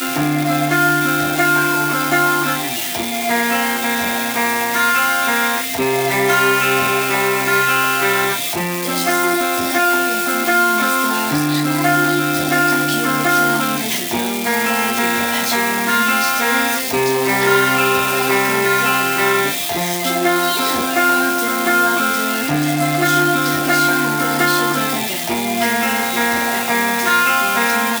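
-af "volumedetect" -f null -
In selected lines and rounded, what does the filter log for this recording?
mean_volume: -16.6 dB
max_volume: -1.9 dB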